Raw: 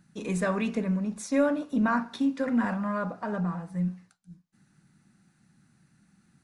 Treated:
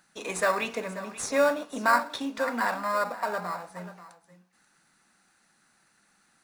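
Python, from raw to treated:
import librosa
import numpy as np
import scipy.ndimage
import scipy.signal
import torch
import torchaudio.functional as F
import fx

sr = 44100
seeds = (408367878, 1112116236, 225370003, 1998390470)

p1 = scipy.signal.sosfilt(scipy.signal.butter(2, 680.0, 'highpass', fs=sr, output='sos'), x)
p2 = fx.sample_hold(p1, sr, seeds[0], rate_hz=3100.0, jitter_pct=0)
p3 = p1 + (p2 * 10.0 ** (-10.5 / 20.0))
p4 = p3 + 10.0 ** (-15.5 / 20.0) * np.pad(p3, (int(535 * sr / 1000.0), 0))[:len(p3)]
y = p4 * 10.0 ** (6.0 / 20.0)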